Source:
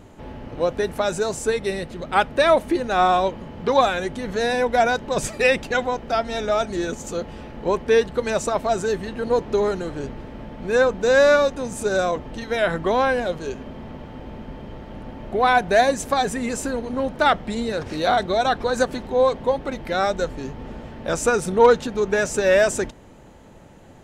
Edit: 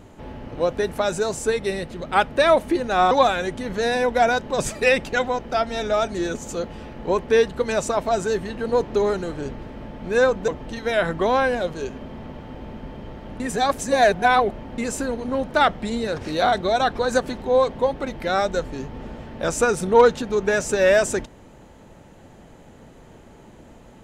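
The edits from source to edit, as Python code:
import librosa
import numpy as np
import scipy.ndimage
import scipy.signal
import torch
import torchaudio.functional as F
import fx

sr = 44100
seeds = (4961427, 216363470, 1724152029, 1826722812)

y = fx.edit(x, sr, fx.cut(start_s=3.11, length_s=0.58),
    fx.cut(start_s=11.06, length_s=1.07),
    fx.reverse_span(start_s=15.05, length_s=1.38), tone=tone)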